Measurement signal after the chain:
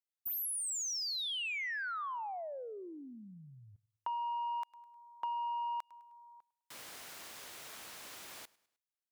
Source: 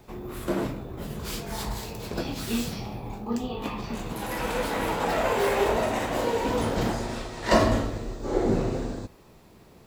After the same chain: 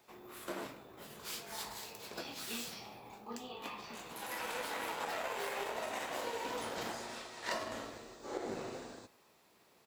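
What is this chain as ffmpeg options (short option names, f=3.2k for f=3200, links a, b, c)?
-af "highpass=f=1k:p=1,aeval=exprs='0.251*(cos(1*acos(clip(val(0)/0.251,-1,1)))-cos(1*PI/2))+0.0282*(cos(5*acos(clip(val(0)/0.251,-1,1)))-cos(5*PI/2))+0.0316*(cos(7*acos(clip(val(0)/0.251,-1,1)))-cos(7*PI/2))':c=same,aecho=1:1:103|206|309:0.0708|0.0311|0.0137,acompressor=threshold=-31dB:ratio=10,volume=-3.5dB"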